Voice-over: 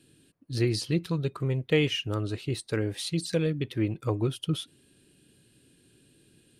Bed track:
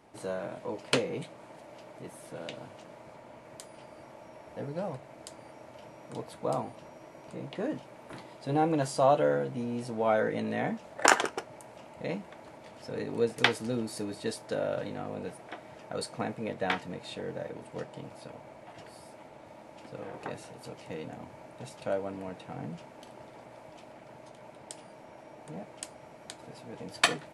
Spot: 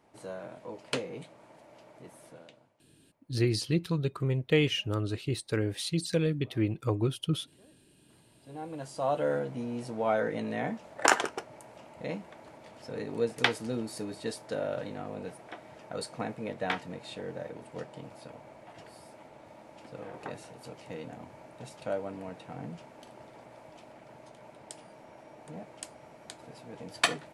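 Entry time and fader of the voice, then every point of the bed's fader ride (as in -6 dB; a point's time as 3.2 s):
2.80 s, -1.0 dB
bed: 2.27 s -5.5 dB
2.86 s -28 dB
7.87 s -28 dB
9.34 s -1.5 dB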